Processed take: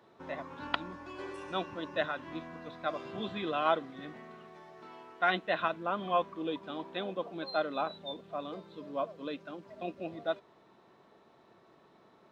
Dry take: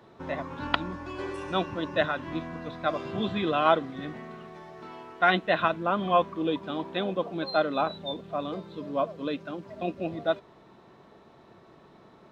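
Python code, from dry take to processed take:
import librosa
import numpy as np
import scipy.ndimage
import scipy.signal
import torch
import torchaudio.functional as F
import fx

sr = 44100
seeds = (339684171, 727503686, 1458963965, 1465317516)

y = fx.low_shelf(x, sr, hz=150.0, db=-10.5)
y = F.gain(torch.from_numpy(y), -6.0).numpy()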